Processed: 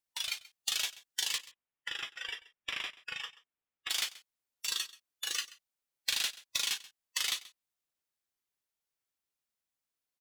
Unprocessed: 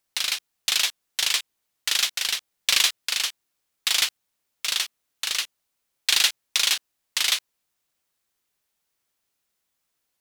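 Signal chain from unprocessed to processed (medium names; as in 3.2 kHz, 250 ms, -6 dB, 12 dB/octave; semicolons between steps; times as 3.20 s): saturation -12.5 dBFS, distortion -16 dB; spectral noise reduction 13 dB; compression 4:1, threshold -31 dBFS, peak gain reduction 11.5 dB; 1.38–3.90 s: Savitzky-Golay filter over 25 samples; delay 132 ms -19.5 dB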